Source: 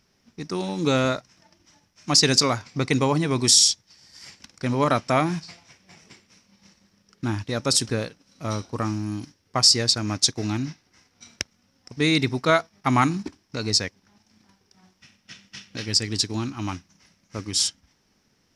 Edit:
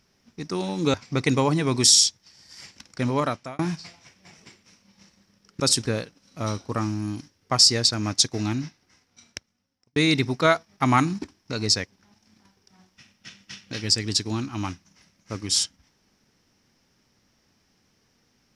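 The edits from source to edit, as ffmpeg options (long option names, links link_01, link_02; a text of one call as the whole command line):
ffmpeg -i in.wav -filter_complex "[0:a]asplit=5[link_01][link_02][link_03][link_04][link_05];[link_01]atrim=end=0.942[link_06];[link_02]atrim=start=2.578:end=5.23,asetpts=PTS-STARTPTS,afade=type=out:start_time=2.112:duration=0.54[link_07];[link_03]atrim=start=5.23:end=7.242,asetpts=PTS-STARTPTS,afade=type=in:duration=0.004:curve=hsin[link_08];[link_04]atrim=start=7.638:end=12,asetpts=PTS-STARTPTS,afade=type=out:start_time=2.942:duration=1.42[link_09];[link_05]atrim=start=12,asetpts=PTS-STARTPTS,afade=type=in:duration=0.004:curve=hsin[link_10];[link_07][link_08]concat=n=2:v=0:a=1[link_11];[link_06][link_11]acrossfade=duration=0.004:curve1=hsin:curve2=hsin[link_12];[link_09][link_10]concat=n=2:v=0:a=1[link_13];[link_12][link_13]acrossfade=duration=0.004:curve1=hsin:curve2=hsin" out.wav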